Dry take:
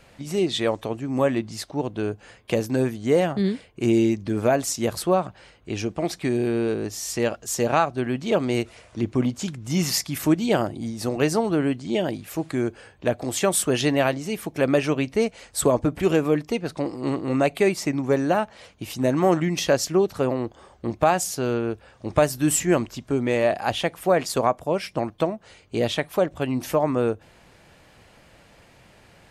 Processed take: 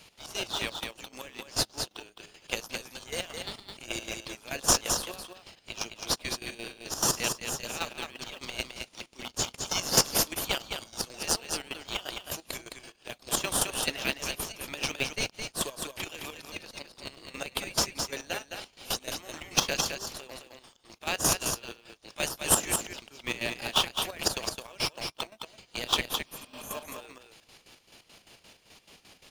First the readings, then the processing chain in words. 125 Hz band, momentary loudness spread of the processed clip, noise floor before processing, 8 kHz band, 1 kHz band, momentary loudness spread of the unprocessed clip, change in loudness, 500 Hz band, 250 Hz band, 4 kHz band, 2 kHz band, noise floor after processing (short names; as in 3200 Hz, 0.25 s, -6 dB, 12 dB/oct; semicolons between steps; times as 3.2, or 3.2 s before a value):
-15.0 dB, 17 LU, -54 dBFS, +1.0 dB, -9.0 dB, 9 LU, -7.0 dB, -16.5 dB, -18.5 dB, +2.5 dB, -4.0 dB, -63 dBFS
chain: weighting filter D; spectral repair 26.15–26.73, 290–6000 Hz both; differentiator; notch 7900 Hz, Q 7; in parallel at -3.5 dB: sample-and-hold 20×; on the sum: step gate "x.x.x..x." 173 bpm -12 dB; on a send: echo 0.213 s -6 dB